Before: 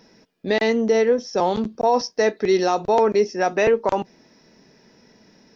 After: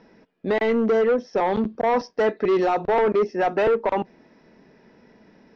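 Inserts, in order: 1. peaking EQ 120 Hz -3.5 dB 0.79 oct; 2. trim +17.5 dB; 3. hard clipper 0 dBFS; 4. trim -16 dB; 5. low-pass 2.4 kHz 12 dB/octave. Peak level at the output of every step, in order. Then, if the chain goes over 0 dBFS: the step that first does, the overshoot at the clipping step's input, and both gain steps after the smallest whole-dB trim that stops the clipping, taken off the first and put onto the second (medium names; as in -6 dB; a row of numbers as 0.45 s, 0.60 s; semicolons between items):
-8.5 dBFS, +9.0 dBFS, 0.0 dBFS, -16.0 dBFS, -15.5 dBFS; step 2, 9.0 dB; step 2 +8.5 dB, step 4 -7 dB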